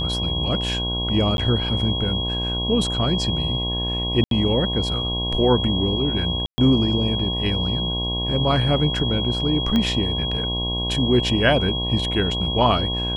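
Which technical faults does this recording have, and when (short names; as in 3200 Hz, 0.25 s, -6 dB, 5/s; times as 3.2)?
buzz 60 Hz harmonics 18 -27 dBFS
tone 3300 Hz -25 dBFS
1.37–1.38 gap 11 ms
4.24–4.31 gap 72 ms
6.46–6.58 gap 0.12 s
9.76 pop -10 dBFS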